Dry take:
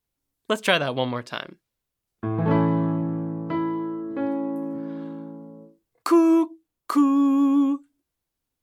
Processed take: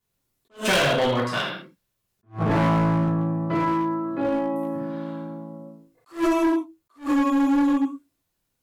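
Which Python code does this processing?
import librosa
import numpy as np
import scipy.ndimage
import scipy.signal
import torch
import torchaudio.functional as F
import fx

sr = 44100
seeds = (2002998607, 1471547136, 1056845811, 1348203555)

y = fx.rev_gated(x, sr, seeds[0], gate_ms=230, shape='falling', drr_db=-7.5)
y = np.clip(10.0 ** (16.0 / 20.0) * y, -1.0, 1.0) / 10.0 ** (16.0 / 20.0)
y = fx.attack_slew(y, sr, db_per_s=250.0)
y = F.gain(torch.from_numpy(y), -1.5).numpy()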